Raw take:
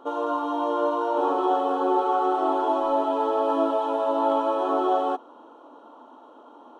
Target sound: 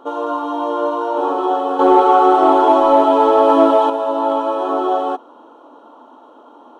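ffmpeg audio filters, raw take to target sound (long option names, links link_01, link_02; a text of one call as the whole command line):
ffmpeg -i in.wav -filter_complex "[0:a]asettb=1/sr,asplit=3[link_01][link_02][link_03];[link_01]atrim=end=1.794[link_04];[link_02]atrim=start=1.79:end=3.9,asetpts=PTS-STARTPTS,afade=type=in:duration=0.004:curve=qsin,afade=type=out:start_time=2.106:duration=0.004:curve=qsin,acontrast=86[link_05];[link_03]atrim=start=3.896[link_06];[link_04][link_05]acrossfade=duration=0.004:curve1=hsin:curve2=qsin[link_07];[link_07][link_06]acrossfade=duration=0.004:curve1=qsin:curve2=hsin,volume=5dB" out.wav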